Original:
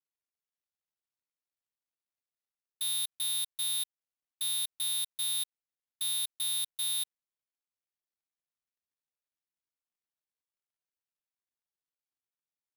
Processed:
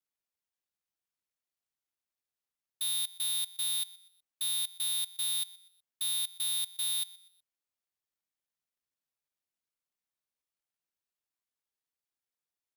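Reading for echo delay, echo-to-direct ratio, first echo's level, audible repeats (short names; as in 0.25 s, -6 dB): 0.123 s, -19.5 dB, -20.0 dB, 2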